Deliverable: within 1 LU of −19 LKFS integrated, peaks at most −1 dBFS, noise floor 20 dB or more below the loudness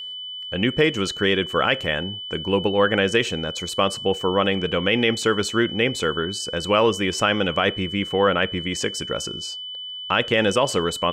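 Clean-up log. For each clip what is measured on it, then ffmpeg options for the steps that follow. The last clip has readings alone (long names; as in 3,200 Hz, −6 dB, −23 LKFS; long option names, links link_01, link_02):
interfering tone 3,000 Hz; level of the tone −31 dBFS; integrated loudness −22.0 LKFS; sample peak −6.0 dBFS; target loudness −19.0 LKFS
→ -af "bandreject=frequency=3000:width=30"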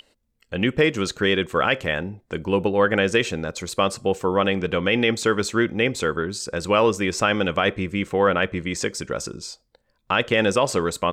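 interfering tone none found; integrated loudness −22.0 LKFS; sample peak −6.5 dBFS; target loudness −19.0 LKFS
→ -af "volume=3dB"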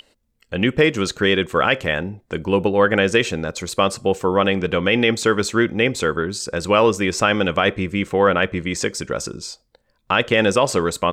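integrated loudness −19.0 LKFS; sample peak −3.5 dBFS; background noise floor −67 dBFS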